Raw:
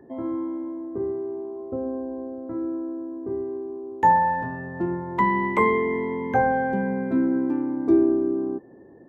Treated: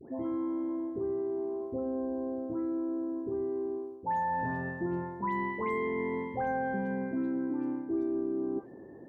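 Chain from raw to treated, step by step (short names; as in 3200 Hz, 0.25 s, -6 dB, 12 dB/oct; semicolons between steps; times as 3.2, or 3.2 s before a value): reverse; compressor 6:1, threshold -30 dBFS, peak gain reduction 15.5 dB; reverse; dispersion highs, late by 0.144 s, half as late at 1600 Hz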